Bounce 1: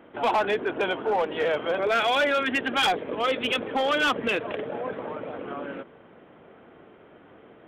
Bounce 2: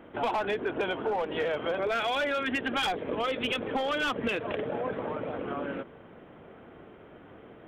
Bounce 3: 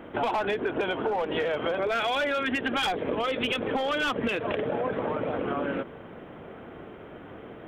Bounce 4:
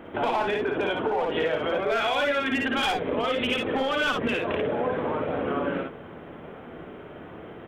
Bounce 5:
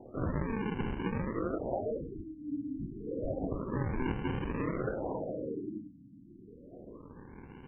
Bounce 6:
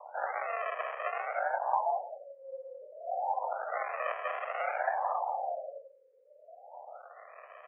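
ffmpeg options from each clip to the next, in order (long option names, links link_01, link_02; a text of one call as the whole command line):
ffmpeg -i in.wav -af "acompressor=threshold=-27dB:ratio=6,lowshelf=frequency=110:gain=10" out.wav
ffmpeg -i in.wav -af "acompressor=threshold=-31dB:ratio=6,volume=6.5dB" out.wav
ffmpeg -i in.wav -af "aecho=1:1:56|68:0.631|0.422" out.wav
ffmpeg -i in.wav -af "afreqshift=32,acrusher=samples=39:mix=1:aa=0.000001:lfo=1:lforange=62.4:lforate=0.3,afftfilt=real='re*lt(b*sr/1024,310*pow(3200/310,0.5+0.5*sin(2*PI*0.29*pts/sr)))':imag='im*lt(b*sr/1024,310*pow(3200/310,0.5+0.5*sin(2*PI*0.29*pts/sr)))':win_size=1024:overlap=0.75,volume=-7.5dB" out.wav
ffmpeg -i in.wav -af "aecho=1:1:172:0.141,highpass=frequency=410:width_type=q:width=0.5412,highpass=frequency=410:width_type=q:width=1.307,lowpass=frequency=2300:width_type=q:width=0.5176,lowpass=frequency=2300:width_type=q:width=0.7071,lowpass=frequency=2300:width_type=q:width=1.932,afreqshift=240,volume=6dB" out.wav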